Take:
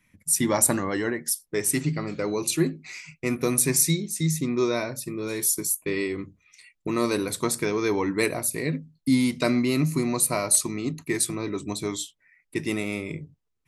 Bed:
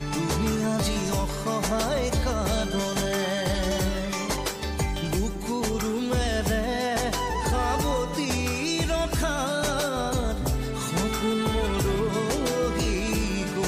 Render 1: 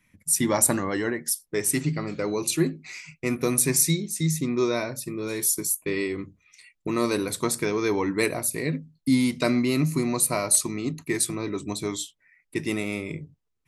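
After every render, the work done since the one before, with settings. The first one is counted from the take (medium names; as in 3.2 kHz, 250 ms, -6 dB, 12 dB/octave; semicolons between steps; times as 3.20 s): no audible change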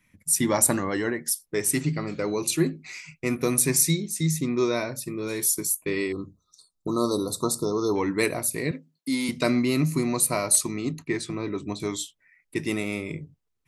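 6.12–7.96 s: brick-wall FIR band-stop 1.4–3.5 kHz; 8.71–9.29 s: high-pass 340 Hz; 11.02–11.80 s: distance through air 120 m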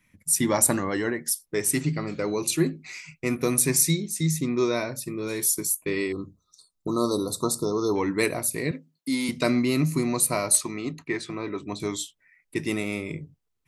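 10.57–11.73 s: overdrive pedal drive 7 dB, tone 2.6 kHz, clips at -10 dBFS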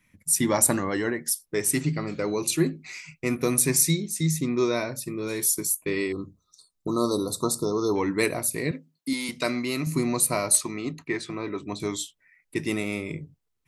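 9.13–9.87 s: bass shelf 370 Hz -9.5 dB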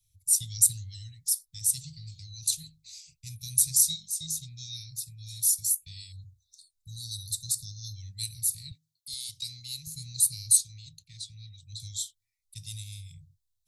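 Chebyshev band-stop 110–3700 Hz, order 4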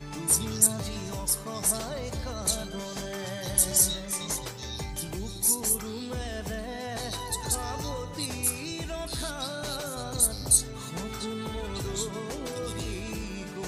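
add bed -9.5 dB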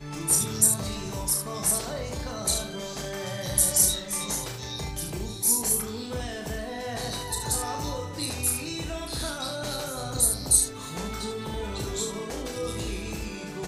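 early reflections 34 ms -5 dB, 74 ms -7 dB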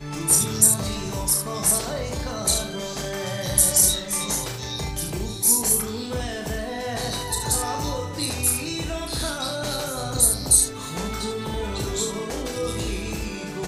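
trim +4.5 dB; peak limiter -2 dBFS, peak gain reduction 3 dB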